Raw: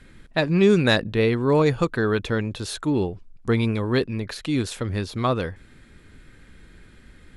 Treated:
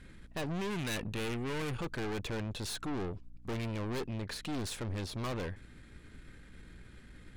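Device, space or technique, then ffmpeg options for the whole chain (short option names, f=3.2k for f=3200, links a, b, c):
valve amplifier with mains hum: -filter_complex "[0:a]aeval=exprs='(tanh(39.8*val(0)+0.55)-tanh(0.55))/39.8':c=same,aeval=exprs='val(0)+0.00178*(sin(2*PI*60*n/s)+sin(2*PI*2*60*n/s)/2+sin(2*PI*3*60*n/s)/3+sin(2*PI*4*60*n/s)/4+sin(2*PI*5*60*n/s)/5)':c=same,asettb=1/sr,asplit=3[a][b][c];[a]atrim=end=0.704[d];[b]atrim=start=0.7:end=1.8,asetpts=PTS-STARTPTS,afade=t=in:d=0.004:c=qsin,afade=t=out:st=1.096:d=0.004:c=qsin,equalizer=f=630:t=o:w=0.67:g=-5,equalizer=f=2.5k:t=o:w=0.67:g=5,equalizer=f=10k:t=o:w=0.67:g=5[e];[c]atrim=start=1.796[f];[d][e]acrossfade=d=0.004:c1=hsin:c2=qsin[g];[g][f]acrossfade=d=0.004:c1=qsin:c2=hsin,volume=-2.5dB"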